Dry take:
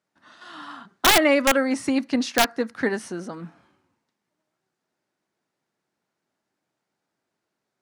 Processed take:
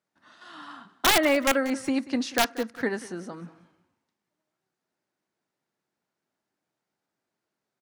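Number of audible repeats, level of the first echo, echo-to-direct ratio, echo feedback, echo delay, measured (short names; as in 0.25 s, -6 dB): 2, -18.0 dB, -17.5 dB, 24%, 0.186 s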